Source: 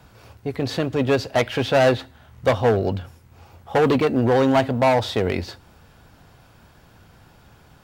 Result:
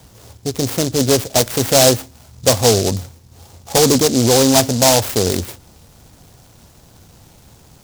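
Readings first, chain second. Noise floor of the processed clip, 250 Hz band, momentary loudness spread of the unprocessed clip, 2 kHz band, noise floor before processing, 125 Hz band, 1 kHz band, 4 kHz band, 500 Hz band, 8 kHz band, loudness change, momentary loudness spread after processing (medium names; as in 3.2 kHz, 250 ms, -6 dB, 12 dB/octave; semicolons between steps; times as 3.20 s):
-47 dBFS, +4.5 dB, 11 LU, +1.0 dB, -52 dBFS, +5.0 dB, +2.0 dB, +13.0 dB, +3.5 dB, no reading, +6.0 dB, 11 LU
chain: delay time shaken by noise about 5.4 kHz, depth 0.17 ms; trim +5 dB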